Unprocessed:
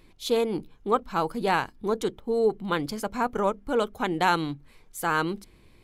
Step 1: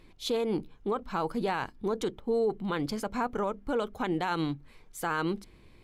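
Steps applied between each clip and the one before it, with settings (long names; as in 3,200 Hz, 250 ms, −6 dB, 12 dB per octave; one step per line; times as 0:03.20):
high-shelf EQ 8,100 Hz −8.5 dB
brickwall limiter −20.5 dBFS, peak gain reduction 10.5 dB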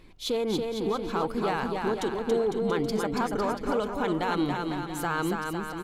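in parallel at −8 dB: soft clipping −34.5 dBFS, distortion −7 dB
on the sum: bouncing-ball delay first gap 280 ms, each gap 0.8×, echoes 5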